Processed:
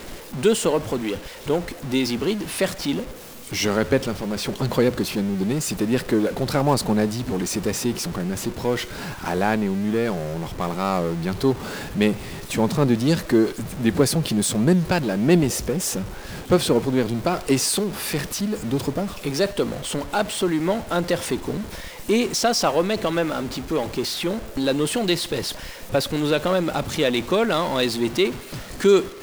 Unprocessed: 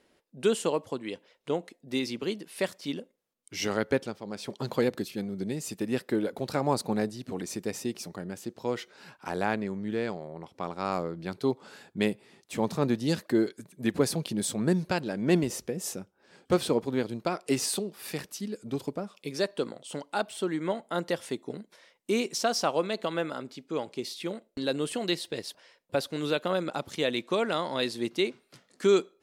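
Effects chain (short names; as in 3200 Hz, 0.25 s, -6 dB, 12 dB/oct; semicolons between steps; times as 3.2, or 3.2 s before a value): zero-crossing step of -38.5 dBFS; low shelf 110 Hz +8 dB; in parallel at -11 dB: Schmitt trigger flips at -40 dBFS; on the sum: gain +5 dB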